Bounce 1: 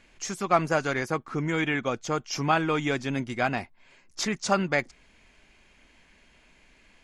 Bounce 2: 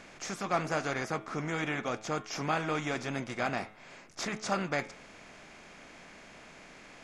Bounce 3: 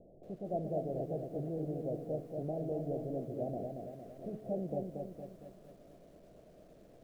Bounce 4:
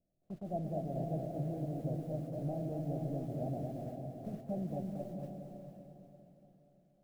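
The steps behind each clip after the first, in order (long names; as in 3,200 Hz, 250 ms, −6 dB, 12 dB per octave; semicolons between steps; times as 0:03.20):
compressor on every frequency bin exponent 0.6; hum removal 107.8 Hz, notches 36; flanger 0.94 Hz, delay 0.1 ms, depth 7.5 ms, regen −78%; level −5 dB
Butterworth low-pass 680 Hz 72 dB per octave; parametric band 250 Hz −5.5 dB 0.66 octaves; feedback echo at a low word length 230 ms, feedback 55%, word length 11 bits, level −4.5 dB; level −1.5 dB
noise gate −45 dBFS, range −24 dB; parametric band 450 Hz −13.5 dB 0.91 octaves; feedback delay with all-pass diffusion 472 ms, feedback 41%, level −5 dB; level +3.5 dB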